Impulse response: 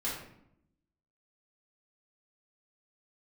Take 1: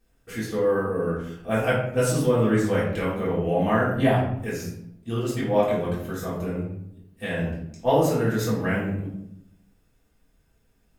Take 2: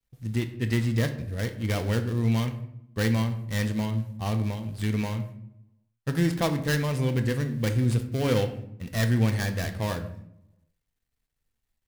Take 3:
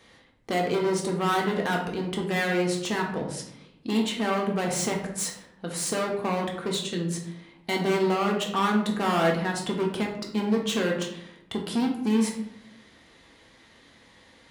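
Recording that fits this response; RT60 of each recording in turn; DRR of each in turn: 1; 0.75, 0.80, 0.75 s; -9.0, 6.5, 0.0 dB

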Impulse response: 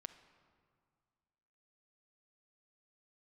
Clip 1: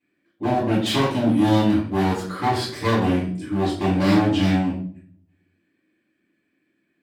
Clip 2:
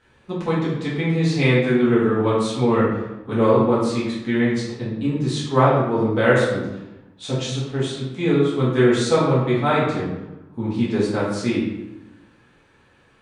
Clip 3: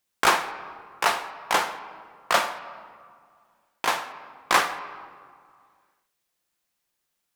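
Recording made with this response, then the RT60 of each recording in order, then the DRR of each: 3; 0.55, 1.0, 2.0 s; -7.5, -9.0, 8.5 dB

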